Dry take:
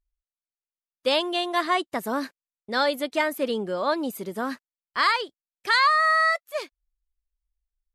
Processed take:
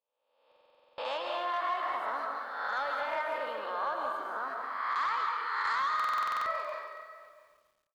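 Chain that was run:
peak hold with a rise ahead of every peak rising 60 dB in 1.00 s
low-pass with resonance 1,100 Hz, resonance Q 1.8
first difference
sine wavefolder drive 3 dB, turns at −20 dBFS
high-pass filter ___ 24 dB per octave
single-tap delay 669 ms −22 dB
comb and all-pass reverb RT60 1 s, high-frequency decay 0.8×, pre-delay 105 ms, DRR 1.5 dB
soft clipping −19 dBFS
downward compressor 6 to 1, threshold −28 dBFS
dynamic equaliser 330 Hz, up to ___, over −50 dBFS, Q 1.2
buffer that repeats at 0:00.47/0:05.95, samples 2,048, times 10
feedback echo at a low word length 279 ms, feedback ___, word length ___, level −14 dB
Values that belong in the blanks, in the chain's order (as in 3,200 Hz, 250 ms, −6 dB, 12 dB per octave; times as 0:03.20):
230 Hz, −5 dB, 35%, 10 bits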